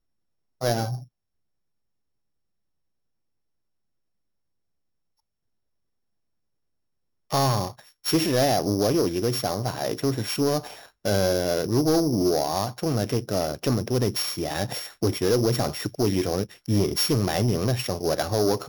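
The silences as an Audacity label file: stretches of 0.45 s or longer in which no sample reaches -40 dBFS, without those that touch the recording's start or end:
1.040000	7.310000	silence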